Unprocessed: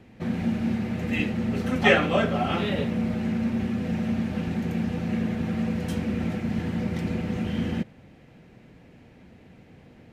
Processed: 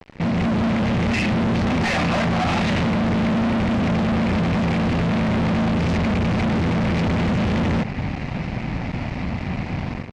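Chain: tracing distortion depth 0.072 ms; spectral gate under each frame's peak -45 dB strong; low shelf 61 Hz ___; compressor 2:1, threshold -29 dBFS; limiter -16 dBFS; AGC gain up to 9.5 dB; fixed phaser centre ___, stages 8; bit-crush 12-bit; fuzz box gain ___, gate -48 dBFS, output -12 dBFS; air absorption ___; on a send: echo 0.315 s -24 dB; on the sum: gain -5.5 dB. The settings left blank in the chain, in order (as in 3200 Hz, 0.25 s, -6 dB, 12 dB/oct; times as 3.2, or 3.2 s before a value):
+4.5 dB, 2200 Hz, 41 dB, 110 m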